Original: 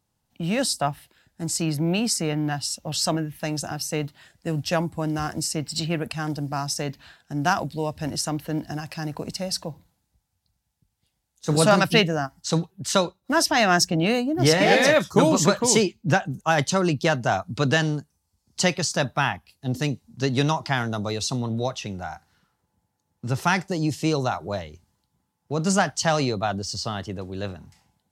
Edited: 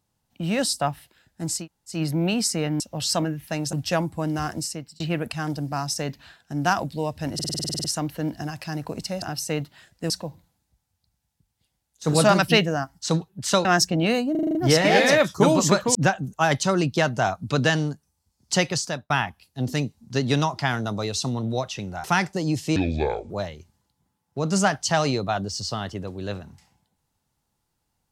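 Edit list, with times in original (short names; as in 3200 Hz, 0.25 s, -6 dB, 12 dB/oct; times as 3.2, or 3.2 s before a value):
1.6 insert room tone 0.34 s, crossfade 0.16 s
2.46–2.72 cut
3.65–4.53 move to 9.52
5.32–5.8 fade out
8.14 stutter 0.05 s, 11 plays
13.07–13.65 cut
14.31 stutter 0.04 s, 7 plays
15.71–16.02 cut
18.83–19.17 fade out
22.11–23.39 cut
24.11–24.44 speed 61%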